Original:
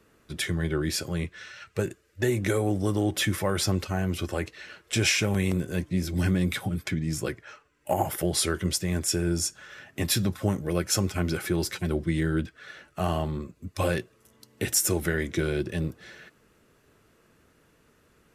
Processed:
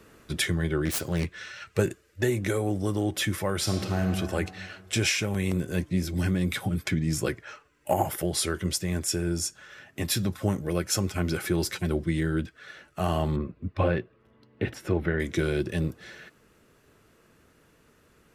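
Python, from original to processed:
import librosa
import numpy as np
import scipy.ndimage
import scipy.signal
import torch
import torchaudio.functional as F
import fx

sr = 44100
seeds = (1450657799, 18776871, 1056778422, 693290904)

y = fx.self_delay(x, sr, depth_ms=0.25, at=(0.85, 1.34))
y = fx.reverb_throw(y, sr, start_s=3.57, length_s=0.44, rt60_s=1.9, drr_db=3.0)
y = fx.air_absorb(y, sr, metres=400.0, at=(13.36, 15.2))
y = fx.rider(y, sr, range_db=10, speed_s=0.5)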